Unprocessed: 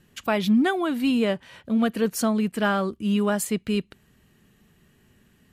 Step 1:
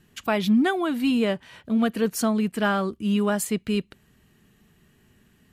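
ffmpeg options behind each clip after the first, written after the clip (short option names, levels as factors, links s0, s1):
-af "bandreject=f=540:w=12"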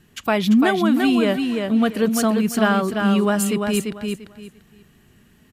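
-af "aecho=1:1:343|686|1029:0.562|0.124|0.0272,volume=1.58"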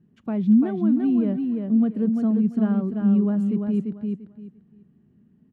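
-af "bandpass=f=200:t=q:w=1.7:csg=0"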